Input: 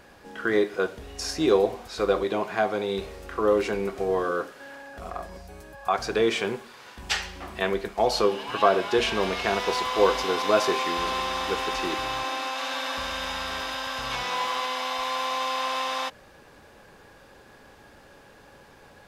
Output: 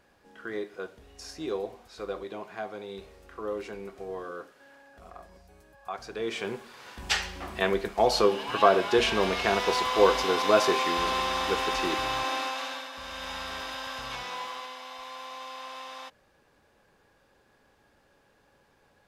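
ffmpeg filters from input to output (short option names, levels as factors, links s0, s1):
-af "volume=2.24,afade=t=in:st=6.17:d=0.76:silence=0.251189,afade=t=out:st=12.38:d=0.53:silence=0.251189,afade=t=in:st=12.91:d=0.43:silence=0.446684,afade=t=out:st=13.9:d=0.89:silence=0.398107"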